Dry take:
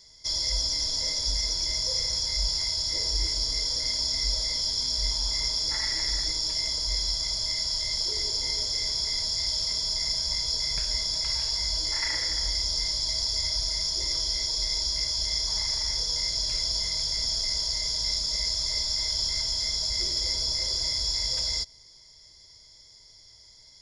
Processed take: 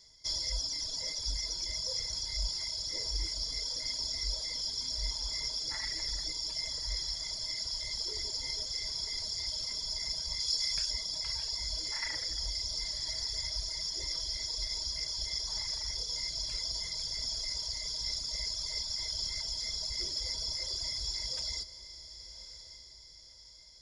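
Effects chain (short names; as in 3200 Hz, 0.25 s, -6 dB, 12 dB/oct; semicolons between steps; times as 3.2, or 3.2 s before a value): reverb removal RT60 1.6 s; 10.4–10.91 tilt shelf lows -5.5 dB, about 1300 Hz; diffused feedback echo 1.117 s, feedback 45%, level -13 dB; gain -5 dB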